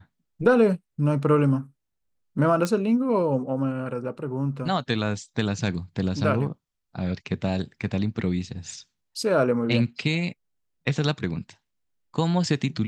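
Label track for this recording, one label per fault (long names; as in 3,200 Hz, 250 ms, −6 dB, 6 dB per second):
2.650000	2.650000	click −12 dBFS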